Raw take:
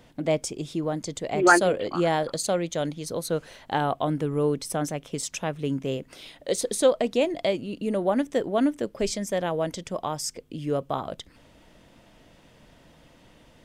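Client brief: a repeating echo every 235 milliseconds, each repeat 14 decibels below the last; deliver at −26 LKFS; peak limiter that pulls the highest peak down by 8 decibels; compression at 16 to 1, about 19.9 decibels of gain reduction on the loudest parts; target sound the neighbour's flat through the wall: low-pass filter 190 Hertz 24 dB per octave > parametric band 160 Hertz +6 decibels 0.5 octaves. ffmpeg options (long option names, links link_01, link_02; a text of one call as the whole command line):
ffmpeg -i in.wav -af "acompressor=threshold=-32dB:ratio=16,alimiter=level_in=3.5dB:limit=-24dB:level=0:latency=1,volume=-3.5dB,lowpass=frequency=190:width=0.5412,lowpass=frequency=190:width=1.3066,equalizer=frequency=160:width_type=o:width=0.5:gain=6,aecho=1:1:235|470:0.2|0.0399,volume=17.5dB" out.wav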